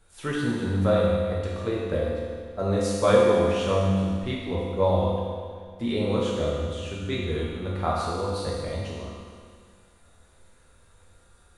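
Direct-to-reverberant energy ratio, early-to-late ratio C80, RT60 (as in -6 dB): -6.5 dB, 0.5 dB, 2.0 s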